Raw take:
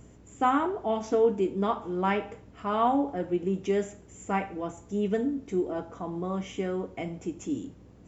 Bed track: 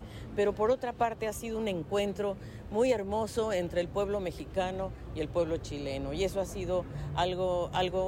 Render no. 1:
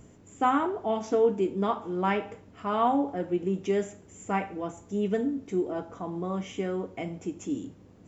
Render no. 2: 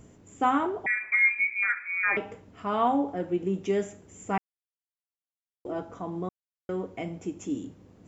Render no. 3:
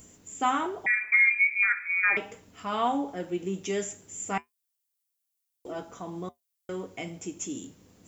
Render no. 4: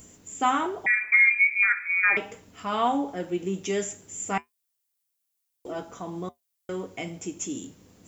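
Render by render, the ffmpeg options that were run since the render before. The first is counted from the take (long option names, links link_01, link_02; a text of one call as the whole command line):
ffmpeg -i in.wav -af "bandreject=frequency=60:width_type=h:width=4,bandreject=frequency=120:width_type=h:width=4" out.wav
ffmpeg -i in.wav -filter_complex "[0:a]asettb=1/sr,asplit=3[link_01][link_02][link_03];[link_01]atrim=end=0.864[link_04];[link_02]atrim=start=0.86:end=2.17,asetpts=PTS-STARTPTS,afade=type=in:duration=0.004:curve=qsin,afade=type=out:start_time=1.306:duration=0.004:curve=qsin,lowpass=frequency=2200:width_type=q:width=0.5098,lowpass=frequency=2200:width_type=q:width=0.6013,lowpass=frequency=2200:width_type=q:width=0.9,lowpass=frequency=2200:width_type=q:width=2.563,afreqshift=-2600[link_05];[link_03]atrim=start=2.166[link_06];[link_04][link_05]acrossfade=duration=0.004:curve1=hsin:curve2=qsin[link_07];[link_07][link_06]acrossfade=duration=0.004:curve1=qsin:curve2=hsin,asplit=5[link_08][link_09][link_10][link_11][link_12];[link_08]atrim=end=4.38,asetpts=PTS-STARTPTS,afade=type=out:start_time=4.376:duration=0.004:curve=hsin[link_13];[link_09]atrim=start=4.38:end=5.65,asetpts=PTS-STARTPTS,volume=0[link_14];[link_10]atrim=start=5.65:end=6.29,asetpts=PTS-STARTPTS,afade=type=in:duration=0.004:curve=hsin,afade=type=out:start_time=0.636:duration=0.004:curve=hsin[link_15];[link_11]atrim=start=6.29:end=6.69,asetpts=PTS-STARTPTS,volume=0[link_16];[link_12]atrim=start=6.69,asetpts=PTS-STARTPTS,afade=type=in:duration=0.004:curve=hsin[link_17];[link_13][link_14][link_15][link_16][link_17]concat=n=5:v=0:a=1" out.wav
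ffmpeg -i in.wav -af "flanger=delay=3.6:depth=3.9:regen=-72:speed=0.37:shape=triangular,crystalizer=i=6:c=0" out.wav
ffmpeg -i in.wav -af "volume=2.5dB" out.wav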